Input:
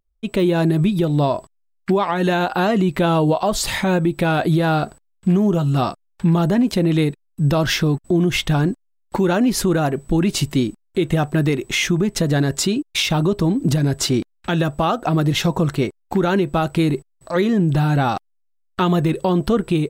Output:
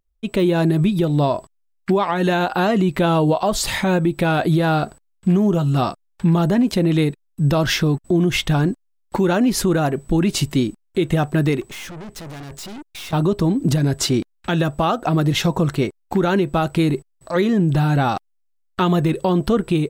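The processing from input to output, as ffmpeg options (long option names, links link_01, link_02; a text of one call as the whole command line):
ffmpeg -i in.wav -filter_complex "[0:a]asettb=1/sr,asplit=3[link_01][link_02][link_03];[link_01]atrim=end=11.614[link_04];[link_02]atrim=start=11.61:end=13.13,asetpts=PTS-STARTPTS,afade=type=in:duration=0.004:curve=qsin,afade=type=out:start_time=1.516:duration=0.004:curve=qsin,aeval=exprs='(tanh(44.7*val(0)+0.4)-tanh(0.4))/44.7':channel_layout=same[link_05];[link_03]atrim=start=13.126[link_06];[link_04][link_05]acrossfade=duration=0.004:curve1=hsin:curve2=qsin[link_07];[link_07][link_06]acrossfade=duration=0.004:curve1=qsin:curve2=hsin" out.wav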